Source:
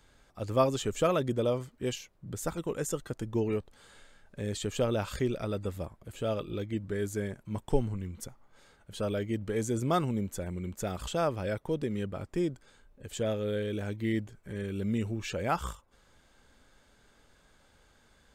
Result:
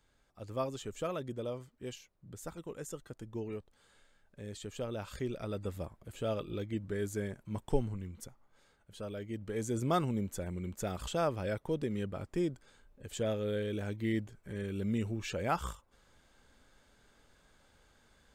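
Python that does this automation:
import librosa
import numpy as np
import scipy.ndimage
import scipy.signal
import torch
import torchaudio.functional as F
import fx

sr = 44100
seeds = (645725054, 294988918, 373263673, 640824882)

y = fx.gain(x, sr, db=fx.line((4.87, -10.0), (5.75, -3.0), (7.68, -3.0), (9.12, -10.0), (9.83, -2.5)))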